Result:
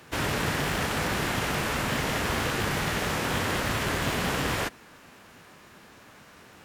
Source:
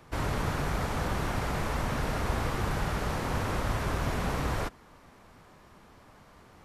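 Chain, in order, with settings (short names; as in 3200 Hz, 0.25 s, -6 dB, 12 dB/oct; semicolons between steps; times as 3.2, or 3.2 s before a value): rattling part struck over -28 dBFS, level -32 dBFS; HPF 230 Hz 6 dB/oct; bell 720 Hz -5 dB 1.8 oct; formant shift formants +4 st; gain +8 dB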